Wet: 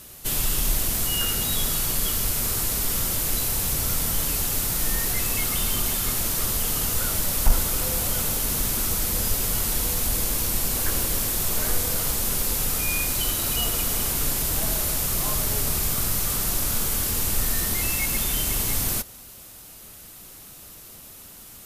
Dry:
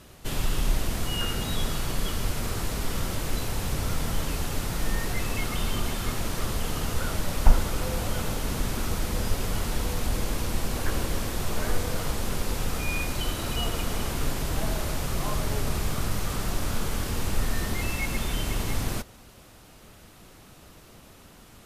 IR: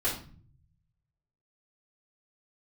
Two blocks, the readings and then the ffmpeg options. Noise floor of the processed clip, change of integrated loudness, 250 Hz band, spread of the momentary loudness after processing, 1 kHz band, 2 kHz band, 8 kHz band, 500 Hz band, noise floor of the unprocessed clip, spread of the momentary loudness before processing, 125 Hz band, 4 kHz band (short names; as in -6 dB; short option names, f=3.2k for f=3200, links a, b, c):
-44 dBFS, +7.5 dB, -1.0 dB, 18 LU, 0.0 dB, +2.0 dB, +12.0 dB, -1.0 dB, -51 dBFS, 2 LU, -1.0 dB, +5.0 dB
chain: -af "aemphasis=mode=production:type=75fm,acontrast=23,volume=-5dB"